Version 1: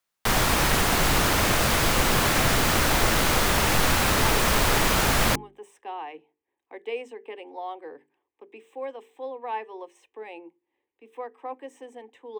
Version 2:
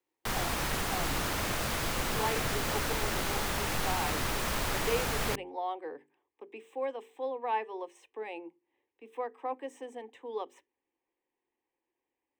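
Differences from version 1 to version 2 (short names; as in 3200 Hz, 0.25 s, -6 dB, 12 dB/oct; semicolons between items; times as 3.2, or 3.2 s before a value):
speech: entry -2.00 s; background -10.5 dB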